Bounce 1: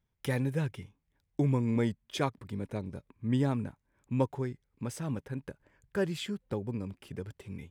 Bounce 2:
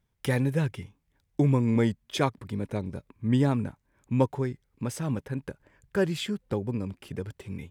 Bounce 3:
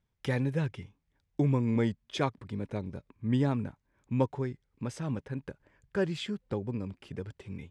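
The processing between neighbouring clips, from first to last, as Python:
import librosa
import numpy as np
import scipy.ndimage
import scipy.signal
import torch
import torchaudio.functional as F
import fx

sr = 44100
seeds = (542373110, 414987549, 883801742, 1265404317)

y1 = fx.wow_flutter(x, sr, seeds[0], rate_hz=2.1, depth_cents=24.0)
y1 = y1 * librosa.db_to_amplitude(5.0)
y2 = scipy.signal.sosfilt(scipy.signal.butter(2, 6500.0, 'lowpass', fs=sr, output='sos'), y1)
y2 = y2 * librosa.db_to_amplitude(-4.0)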